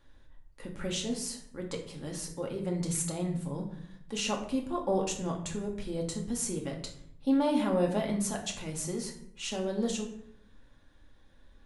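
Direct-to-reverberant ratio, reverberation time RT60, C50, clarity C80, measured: 0.0 dB, 0.70 s, 8.0 dB, 11.5 dB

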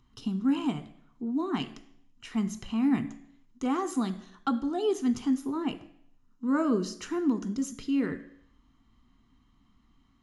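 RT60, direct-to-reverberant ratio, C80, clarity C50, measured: 0.70 s, 9.0 dB, 17.0 dB, 14.5 dB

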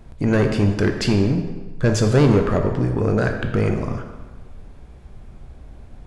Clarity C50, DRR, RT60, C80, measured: 6.5 dB, 4.0 dB, 1.3 s, 8.0 dB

